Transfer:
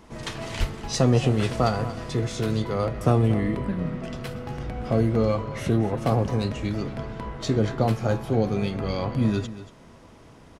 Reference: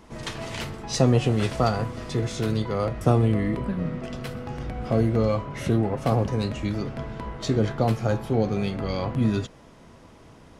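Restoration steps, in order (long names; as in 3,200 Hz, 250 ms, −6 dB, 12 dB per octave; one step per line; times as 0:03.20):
clipped peaks rebuilt −10 dBFS
0:00.59–0:00.71: high-pass filter 140 Hz 24 dB per octave
echo removal 233 ms −14.5 dB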